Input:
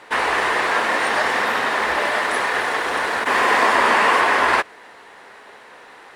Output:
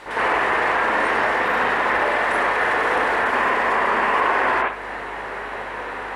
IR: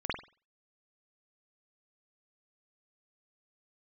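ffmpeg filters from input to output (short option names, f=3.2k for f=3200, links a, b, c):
-filter_complex "[0:a]acompressor=threshold=-24dB:ratio=6,alimiter=level_in=0.5dB:limit=-24dB:level=0:latency=1,volume=-0.5dB,aeval=exprs='val(0)+0.000708*(sin(2*PI*50*n/s)+sin(2*PI*2*50*n/s)/2+sin(2*PI*3*50*n/s)/3+sin(2*PI*4*50*n/s)/4+sin(2*PI*5*50*n/s)/5)':c=same[a];[1:a]atrim=start_sample=2205,asetrate=35280,aresample=44100[b];[a][b]afir=irnorm=-1:irlink=0,volume=5.5dB"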